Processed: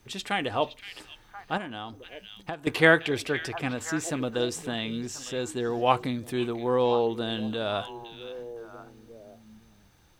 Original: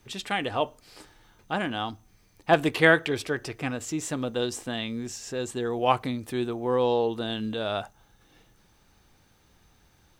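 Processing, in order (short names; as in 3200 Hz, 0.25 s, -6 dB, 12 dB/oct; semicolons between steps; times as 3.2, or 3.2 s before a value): delay with a stepping band-pass 0.516 s, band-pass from 2900 Hz, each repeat -1.4 oct, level -8.5 dB; 1.57–2.67 compressor 12:1, threshold -33 dBFS, peak gain reduction 19.5 dB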